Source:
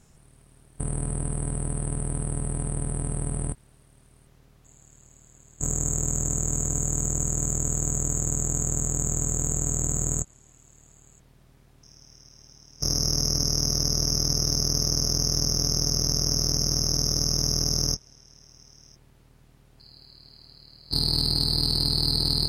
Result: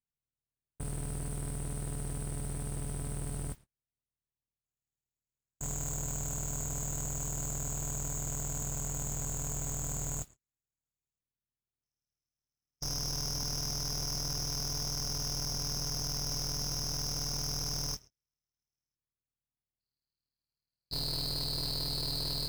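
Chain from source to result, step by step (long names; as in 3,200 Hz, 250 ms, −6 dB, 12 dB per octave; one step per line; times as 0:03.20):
noise that follows the level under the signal 19 dB
gain into a clipping stage and back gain 25 dB
noise gate −43 dBFS, range −38 dB
level −6.5 dB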